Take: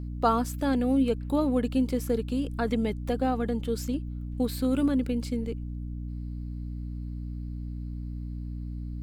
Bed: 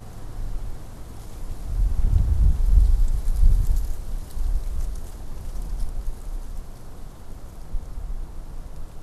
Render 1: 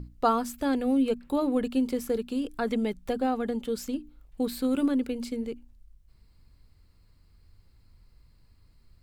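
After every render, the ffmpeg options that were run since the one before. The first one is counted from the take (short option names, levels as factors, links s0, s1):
-af "bandreject=f=60:t=h:w=6,bandreject=f=120:t=h:w=6,bandreject=f=180:t=h:w=6,bandreject=f=240:t=h:w=6,bandreject=f=300:t=h:w=6"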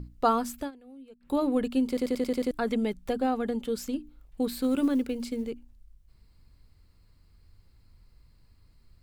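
-filter_complex "[0:a]asettb=1/sr,asplit=3[s0][s1][s2];[s0]atrim=end=4.484[s3];[s1]atrim=start=4.48:end=5.5,asetpts=PTS-STARTPTS,afade=t=in:d=0.004:c=qsin,afade=t=out:st=1.016:d=0.004:c=qsin,acrusher=bits=9:mode=log:mix=0:aa=0.000001[s4];[s2]atrim=start=5.496[s5];[s3][s4]acrossfade=d=0.004:c1=hsin:c2=qsin[s6];[s6][s5]acrossfade=d=0.004:c1=qsin:c2=hsin,asplit=10[s7][s8][s9][s10][s11][s12][s13][s14][s15][s16];[s7]atrim=end=0.71,asetpts=PTS-STARTPTS,afade=t=out:st=0.59:d=0.12:silence=0.0630957[s17];[s8]atrim=start=0.71:end=1.2,asetpts=PTS-STARTPTS,volume=0.0631[s18];[s9]atrim=start=1.2:end=1.972,asetpts=PTS-STARTPTS,afade=t=in:d=0.12:silence=0.0630957[s19];[s10]atrim=start=1.878:end=1.972[s20];[s11]atrim=start=1.878:end=1.972[s21];[s12]atrim=start=1.878:end=1.972[s22];[s13]atrim=start=1.878:end=1.972[s23];[s14]atrim=start=1.878:end=1.972[s24];[s15]atrim=start=1.878:end=1.972[s25];[s16]atrim=start=2.508[s26];[s17][s18][s19]concat=n=3:v=0:a=1[s27];[s27][s20]acrossfade=d=0.004:c1=hsin:c2=hsin[s28];[s28][s21]acrossfade=d=0.004:c1=hsin:c2=hsin[s29];[s29][s22]acrossfade=d=0.004:c1=hsin:c2=hsin[s30];[s30][s23]acrossfade=d=0.004:c1=hsin:c2=hsin[s31];[s31][s24]acrossfade=d=0.004:c1=hsin:c2=hsin[s32];[s32][s25]acrossfade=d=0.004:c1=hsin:c2=hsin[s33];[s33][s26]acrossfade=d=0.004:c1=hsin:c2=hsin"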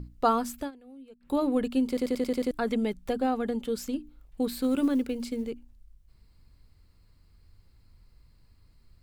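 -af anull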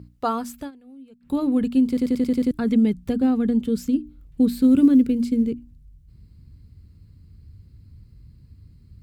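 -af "highpass=84,asubboost=boost=11:cutoff=230"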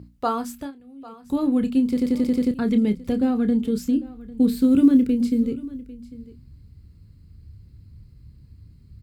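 -filter_complex "[0:a]asplit=2[s0][s1];[s1]adelay=29,volume=0.316[s2];[s0][s2]amix=inputs=2:normalize=0,aecho=1:1:798:0.112"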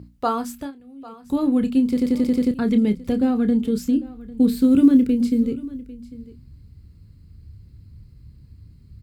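-af "volume=1.19"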